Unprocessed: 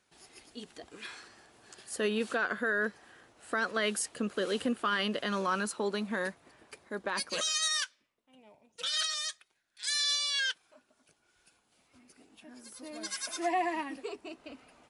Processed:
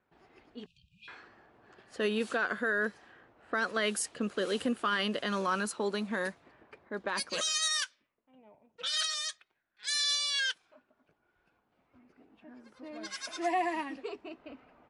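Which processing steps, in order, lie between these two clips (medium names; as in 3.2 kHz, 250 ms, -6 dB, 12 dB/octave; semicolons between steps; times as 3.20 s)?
0.66–1.08 s: brick-wall FIR band-stop 190–2400 Hz; level-controlled noise filter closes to 1.5 kHz, open at -28.5 dBFS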